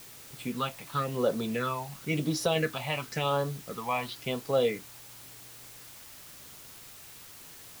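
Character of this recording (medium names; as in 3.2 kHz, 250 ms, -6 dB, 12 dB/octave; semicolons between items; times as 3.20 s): phasing stages 6, 0.95 Hz, lowest notch 390–2400 Hz; a quantiser's noise floor 8-bit, dither triangular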